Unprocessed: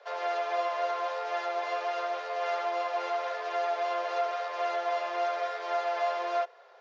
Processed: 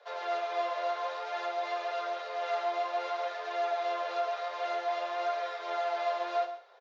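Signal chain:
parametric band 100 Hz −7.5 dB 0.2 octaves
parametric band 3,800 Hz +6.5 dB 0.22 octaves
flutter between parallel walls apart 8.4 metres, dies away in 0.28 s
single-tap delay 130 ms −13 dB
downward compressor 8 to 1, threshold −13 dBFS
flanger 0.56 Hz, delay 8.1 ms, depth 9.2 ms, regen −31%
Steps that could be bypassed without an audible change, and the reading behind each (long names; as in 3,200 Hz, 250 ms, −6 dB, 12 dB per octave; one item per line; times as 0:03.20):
parametric band 100 Hz: nothing at its input below 340 Hz
downward compressor, threshold −13 dBFS: peak of its input −18.0 dBFS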